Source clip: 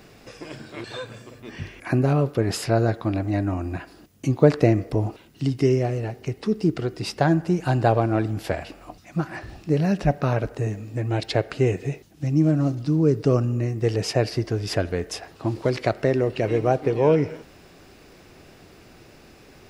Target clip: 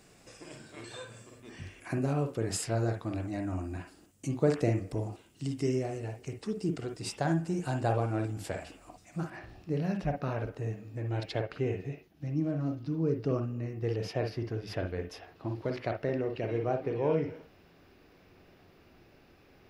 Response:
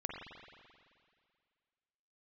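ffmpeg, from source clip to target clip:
-filter_complex "[0:a]asetnsamples=n=441:p=0,asendcmd='9.3 equalizer g -4.5;11.42 equalizer g -13',equalizer=f=8.1k:w=1.5:g=13[a];[1:a]atrim=start_sample=2205,atrim=end_sample=3528[b];[a][b]afir=irnorm=-1:irlink=0,volume=-8.5dB"

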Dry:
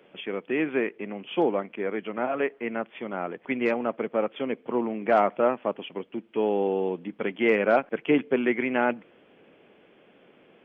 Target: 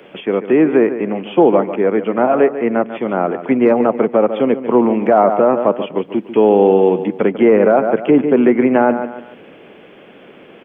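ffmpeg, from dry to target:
-filter_complex "[0:a]asplit=2[a][b];[b]adelay=144,lowpass=f=2.9k:p=1,volume=-12dB,asplit=2[c][d];[d]adelay=144,lowpass=f=2.9k:p=1,volume=0.34,asplit=2[e][f];[f]adelay=144,lowpass=f=2.9k:p=1,volume=0.34[g];[a][c][e][g]amix=inputs=4:normalize=0,acrossover=split=410|1300[h][i][j];[j]acompressor=threshold=-51dB:ratio=4[k];[h][i][k]amix=inputs=3:normalize=0,alimiter=level_in=16dB:limit=-1dB:release=50:level=0:latency=1,volume=-1dB"

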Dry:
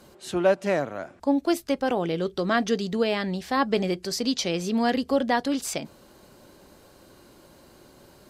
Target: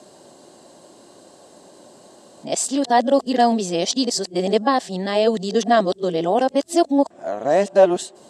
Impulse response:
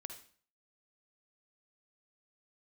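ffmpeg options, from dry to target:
-af "areverse,highpass=200,equalizer=f=680:t=q:w=4:g=7,equalizer=f=1.4k:t=q:w=4:g=-8,equalizer=f=2.3k:t=q:w=4:g=-9,equalizer=f=7.8k:t=q:w=4:g=8,lowpass=f=9.9k:w=0.5412,lowpass=f=9.9k:w=1.3066,volume=5.5dB"

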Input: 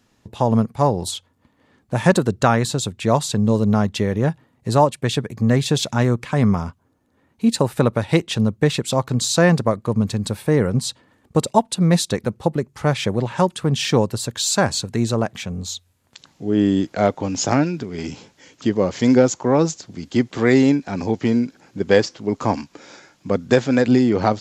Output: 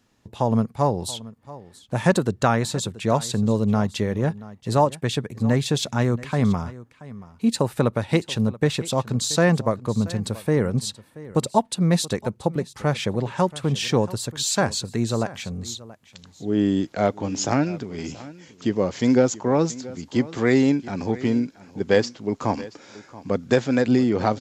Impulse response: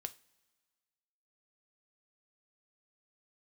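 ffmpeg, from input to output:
-af "aecho=1:1:680:0.119,volume=-3.5dB"

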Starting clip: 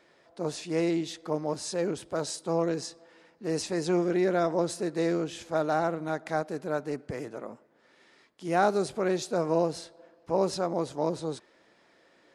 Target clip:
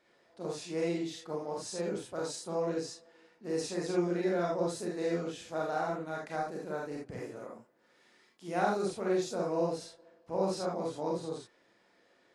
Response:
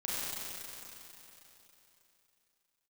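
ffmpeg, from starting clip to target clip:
-filter_complex "[0:a]asettb=1/sr,asplit=3[a][b][c];[a]atrim=end=7.314[d];[b]atrim=start=7.31:end=8.47,asetpts=PTS-STARTPTS,afade=t=in:d=0.004:c=qsin,afade=t=out:st=1.156:d=0.004:c=qsin,highshelf=f=7.4k:g=6.5[e];[c]atrim=start=8.466[f];[d][e]acrossfade=d=0.004:c1=hsin:c2=qsin[g];[g][f]acrossfade=d=0.004:c1=qsin:c2=hsin[h];[1:a]atrim=start_sample=2205,atrim=end_sample=3969[i];[h][i]afir=irnorm=-1:irlink=0,volume=-5.5dB"

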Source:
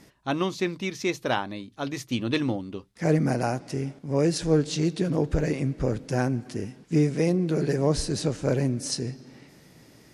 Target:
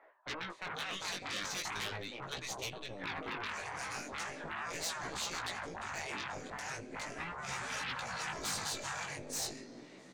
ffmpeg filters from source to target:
-filter_complex "[0:a]asettb=1/sr,asplit=3[a][b][c];[a]atrim=end=2.224[d];[b]atrim=start=2.22:end=3.04,asetpts=PTS-STARTPTS,afade=t=in:d=0.004:c=qsin,afade=t=out:st=0.816:d=0.004:c=qsin,acompressor=threshold=-34dB:ratio=16[e];[c]atrim=start=3.036[f];[d][e]acrossfade=d=0.004:c1=hsin:c2=qsin[g];[g][f]acrossfade=d=0.004:c1=qsin:c2=hsin,asettb=1/sr,asplit=3[h][i][j];[h]atrim=end=6.984[k];[i]atrim=start=6.98:end=8.65,asetpts=PTS-STARTPTS,afade=t=in:d=0.004:c=qsin,afade=t=out:st=1.666:d=0.004:c=qsin,aecho=1:1:3:0.74,atrim=end_sample=73647[l];[j]atrim=start=8.646[m];[k][l]acrossfade=d=0.004:c1=hsin:c2=qsin[n];[n][m]acrossfade=d=0.004:c1=qsin:c2=hsin,acrossover=split=570|1900[o][p][q];[o]adelay=400[r];[q]adelay=500[s];[r][p][s]amix=inputs=3:normalize=0,alimiter=limit=-19.5dB:level=0:latency=1:release=39,highpass=280,equalizer=f=620:t=q:w=4:g=5,equalizer=f=2.8k:t=q:w=4:g=-4,equalizer=f=5.2k:t=q:w=4:g=-10,lowpass=f=7.8k:w=0.5412,lowpass=f=7.8k:w=1.3066,aeval=exprs='0.141*(cos(1*acos(clip(val(0)/0.141,-1,1)))-cos(1*PI/2))+0.0178*(cos(8*acos(clip(val(0)/0.141,-1,1)))-cos(8*PI/2))':c=same,afftfilt=real='re*lt(hypot(re,im),0.0447)':imag='im*lt(hypot(re,im),0.0447)':win_size=1024:overlap=0.75,flanger=delay=15.5:depth=5.4:speed=0.39,asoftclip=type=hard:threshold=-35.5dB,volume=5dB"

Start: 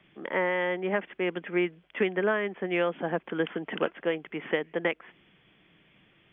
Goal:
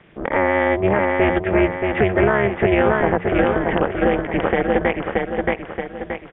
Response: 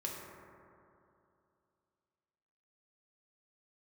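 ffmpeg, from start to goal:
-filter_complex "[0:a]lowpass=2k,bandreject=f=60:t=h:w=6,bandreject=f=120:t=h:w=6,bandreject=f=180:t=h:w=6,tremolo=f=280:d=0.919,asplit=2[a][b];[b]aecho=0:1:626|1252|1878|2504|3130:0.562|0.247|0.109|0.0479|0.0211[c];[a][c]amix=inputs=2:normalize=0,alimiter=level_in=21.5dB:limit=-1dB:release=50:level=0:latency=1,volume=-4.5dB"

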